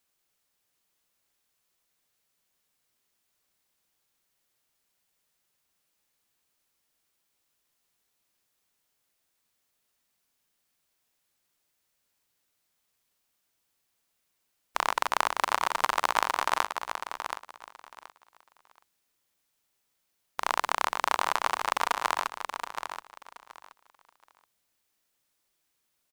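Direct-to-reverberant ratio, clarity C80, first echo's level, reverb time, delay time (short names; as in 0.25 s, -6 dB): none, none, -8.0 dB, none, 0.726 s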